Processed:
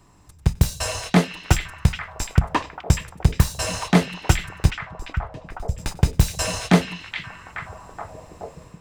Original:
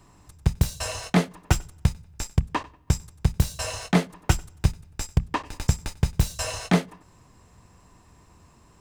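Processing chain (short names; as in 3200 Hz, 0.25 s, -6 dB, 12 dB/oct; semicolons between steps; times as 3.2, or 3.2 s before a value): 4.7–5.78 passive tone stack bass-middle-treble 10-0-1; AGC gain up to 8 dB; delay with a stepping band-pass 0.424 s, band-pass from 2600 Hz, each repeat -0.7 oct, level -2.5 dB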